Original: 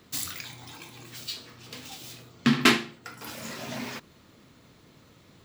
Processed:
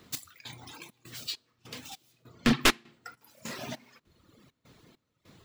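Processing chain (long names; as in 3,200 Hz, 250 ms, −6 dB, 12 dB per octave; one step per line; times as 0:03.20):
wavefolder on the positive side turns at −18 dBFS
gate pattern "x..xxx.xx..x" 100 BPM −12 dB
reverb reduction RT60 1.4 s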